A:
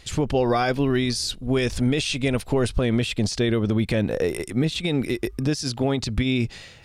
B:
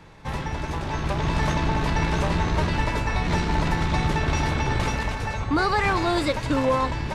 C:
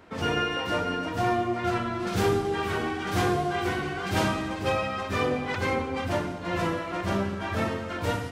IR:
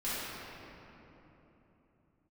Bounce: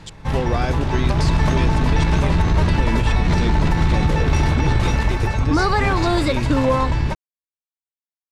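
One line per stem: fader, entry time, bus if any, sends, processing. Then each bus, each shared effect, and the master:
-3.0 dB, 0.00 s, no send, bell 11000 Hz -7.5 dB 0.52 oct; step gate "x..xxxxxx.xx." 162 bpm
+3.0 dB, 0.00 s, no send, low shelf 180 Hz +8.5 dB
off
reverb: off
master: limiter -8 dBFS, peak gain reduction 5.5 dB

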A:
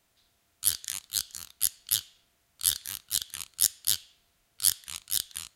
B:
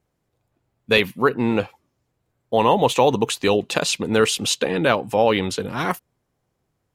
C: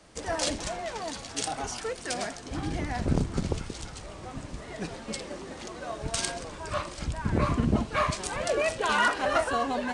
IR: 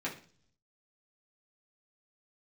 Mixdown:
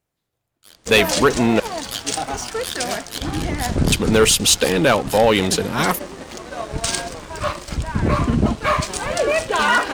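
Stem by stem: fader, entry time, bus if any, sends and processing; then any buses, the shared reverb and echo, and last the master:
1.59 s -21 dB -> 1.83 s -9 dB, 0.00 s, no send, overdrive pedal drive 22 dB, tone 1600 Hz, clips at -2.5 dBFS
-3.5 dB, 0.00 s, muted 1.6–3.92, no send, high shelf 5400 Hz +10 dB
+0.5 dB, 0.70 s, no send, dry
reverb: off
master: sample leveller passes 2

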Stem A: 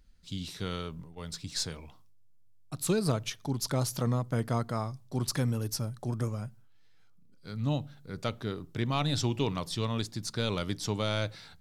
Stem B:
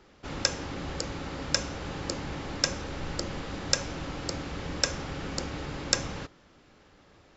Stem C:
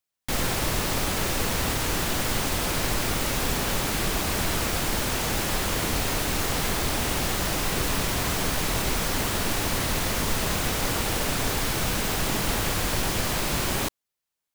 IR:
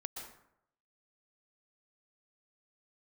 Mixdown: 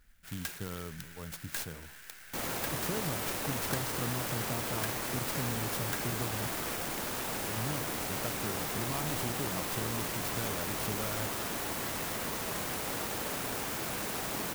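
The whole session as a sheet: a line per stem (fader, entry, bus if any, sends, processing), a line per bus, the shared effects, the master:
-2.5 dB, 0.00 s, no send, compressor, threshold -31 dBFS, peak gain reduction 8.5 dB
-2.0 dB, 0.00 s, no send, elliptic high-pass 1500 Hz; tilt -3 dB/oct; soft clip -24 dBFS, distortion -9 dB
-7.5 dB, 2.05 s, no send, HPF 230 Hz 6 dB/oct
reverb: off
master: clock jitter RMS 0.066 ms

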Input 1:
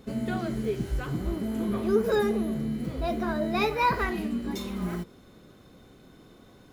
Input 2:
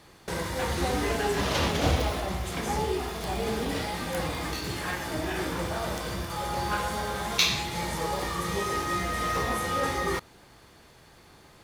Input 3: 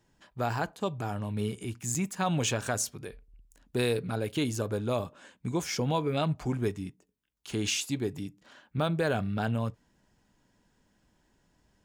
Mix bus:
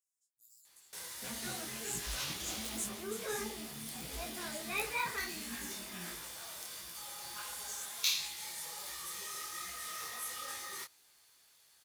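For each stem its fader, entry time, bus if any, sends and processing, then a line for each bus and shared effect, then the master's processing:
-15.0 dB, 1.15 s, no send, bell 2400 Hz +13.5 dB 1.9 oct
+1.0 dB, 0.65 s, no send, pre-emphasis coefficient 0.97
-0.5 dB, 0.00 s, no send, inverse Chebyshev high-pass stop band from 2400 Hz, stop band 60 dB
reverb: off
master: detuned doubles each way 50 cents

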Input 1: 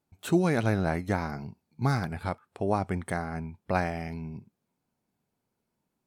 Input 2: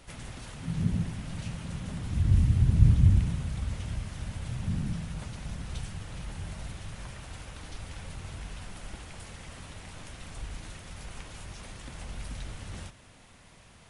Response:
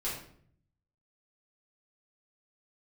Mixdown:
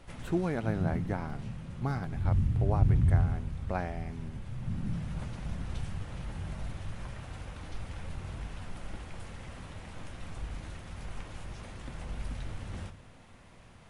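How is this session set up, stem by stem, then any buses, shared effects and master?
-6.0 dB, 0.00 s, no send, dry
0.0 dB, 0.00 s, send -14.5 dB, auto duck -9 dB, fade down 1.20 s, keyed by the first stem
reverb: on, RT60 0.60 s, pre-delay 4 ms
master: high shelf 2900 Hz -10 dB

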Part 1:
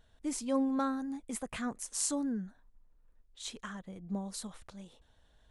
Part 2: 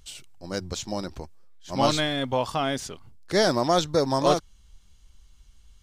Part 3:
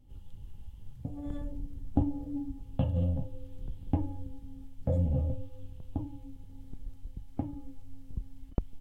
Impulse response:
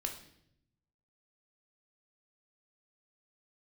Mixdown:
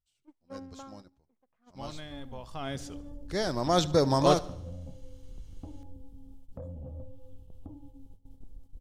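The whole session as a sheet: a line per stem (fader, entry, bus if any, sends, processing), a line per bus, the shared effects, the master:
-8.0 dB, 0.00 s, send -21.5 dB, no echo send, LPF 1100 Hz 12 dB/oct; low shelf 240 Hz -11 dB; power-law curve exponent 1.4
2.42 s -21 dB -> 2.67 s -11 dB -> 3.54 s -11 dB -> 3.8 s -3 dB, 0.00 s, send -17.5 dB, echo send -19.5 dB, bell 98 Hz +6.5 dB 1.8 oct
-4.0 dB, 1.70 s, send -17.5 dB, echo send -18 dB, graphic EQ 125/500/2000 Hz -4/+4/-11 dB; compressor 5:1, threshold -35 dBFS, peak gain reduction 13 dB; soft clip -29 dBFS, distortion -19 dB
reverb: on, RT60 0.75 s, pre-delay 12 ms
echo: feedback echo 73 ms, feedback 52%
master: gate -47 dBFS, range -17 dB

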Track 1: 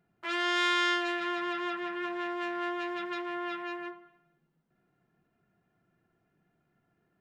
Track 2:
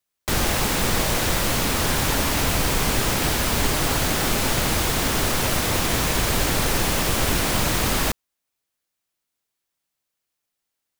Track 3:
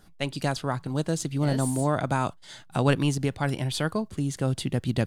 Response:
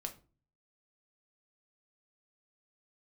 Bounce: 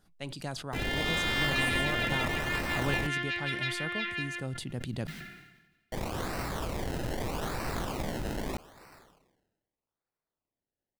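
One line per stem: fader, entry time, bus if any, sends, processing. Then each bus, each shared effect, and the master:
1.35 s -10.5 dB -> 1.59 s -0.5 dB, 0.50 s, no send, graphic EQ 125/250/500/1000/2000/4000 Hz -3/-3/-12/-11/+11/+8 dB
-13.0 dB, 0.45 s, muted 3.07–5.92, no send, decimation with a swept rate 26×, swing 100% 0.8 Hz
-11.5 dB, 0.00 s, send -22 dB, dry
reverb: on, RT60 0.35 s, pre-delay 5 ms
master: sustainer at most 52 dB/s

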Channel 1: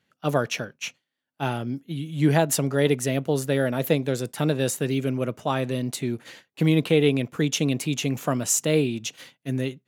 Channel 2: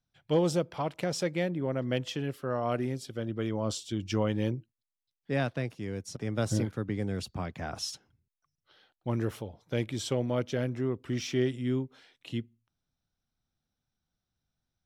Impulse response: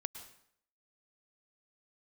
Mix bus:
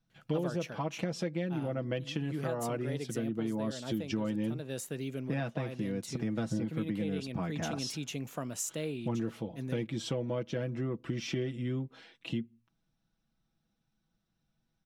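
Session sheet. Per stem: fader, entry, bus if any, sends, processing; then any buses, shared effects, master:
+1.5 dB, 0.10 s, no send, auto duck -13 dB, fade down 1.90 s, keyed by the second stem
+3.0 dB, 0.00 s, no send, LPF 4000 Hz 6 dB/oct; comb 6.1 ms, depth 72%; small resonant body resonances 230/2700 Hz, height 13 dB, ringing for 0.1 s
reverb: off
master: compressor 4:1, threshold -32 dBFS, peak gain reduction 16.5 dB

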